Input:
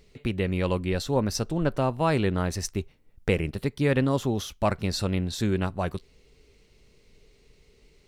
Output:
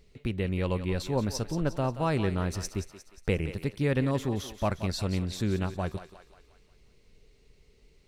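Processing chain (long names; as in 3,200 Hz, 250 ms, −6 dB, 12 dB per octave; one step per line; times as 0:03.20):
low-shelf EQ 160 Hz +4.5 dB
feedback echo with a high-pass in the loop 178 ms, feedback 53%, high-pass 470 Hz, level −10.5 dB
level −5 dB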